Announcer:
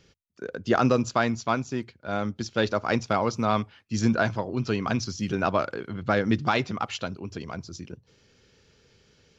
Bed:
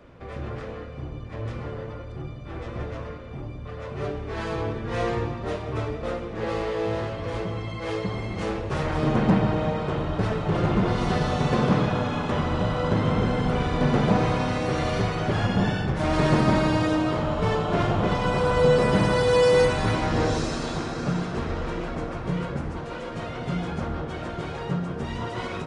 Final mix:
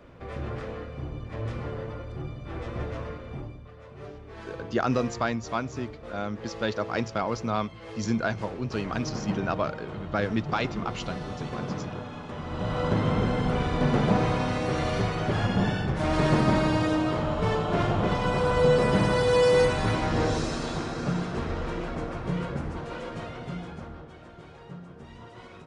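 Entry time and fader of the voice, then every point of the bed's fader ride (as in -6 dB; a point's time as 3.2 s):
4.05 s, -4.0 dB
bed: 3.37 s -0.5 dB
3.73 s -12 dB
12.38 s -12 dB
12.78 s -2 dB
23.06 s -2 dB
24.2 s -15 dB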